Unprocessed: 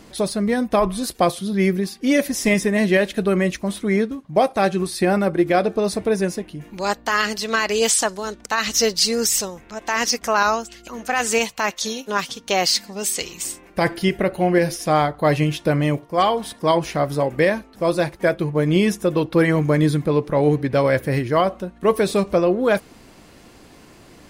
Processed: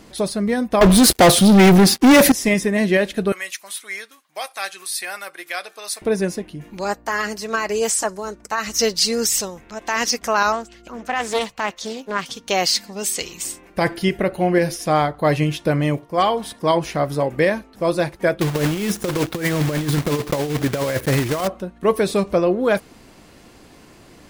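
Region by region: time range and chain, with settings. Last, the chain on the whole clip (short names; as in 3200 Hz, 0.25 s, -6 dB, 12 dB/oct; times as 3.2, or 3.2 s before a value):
0.81–2.32 notch 1100 Hz, Q 7.5 + sample leveller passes 5
3.32–6.02 HPF 1500 Hz + high shelf 8200 Hz +10.5 dB
6.84–8.79 bell 3500 Hz -10 dB 0.85 oct + notch comb 250 Hz
10.52–12.26 high shelf 2800 Hz -9 dB + Doppler distortion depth 0.34 ms
18.41–21.48 block floating point 3-bit + negative-ratio compressor -19 dBFS, ratio -0.5
whole clip: dry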